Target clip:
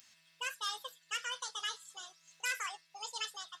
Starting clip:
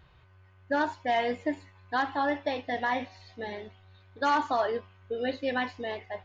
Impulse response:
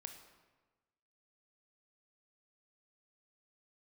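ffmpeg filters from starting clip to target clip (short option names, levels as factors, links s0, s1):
-af "acompressor=mode=upward:threshold=0.00708:ratio=2.5,asetrate=76440,aresample=44100,aderivative,volume=1.19"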